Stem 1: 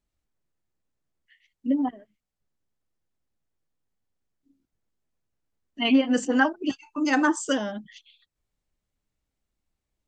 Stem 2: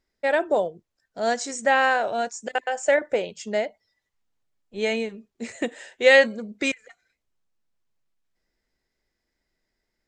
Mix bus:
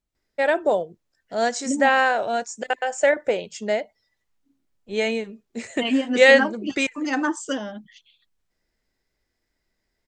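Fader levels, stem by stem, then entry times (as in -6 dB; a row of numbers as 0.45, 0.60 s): -2.0, +1.5 dB; 0.00, 0.15 s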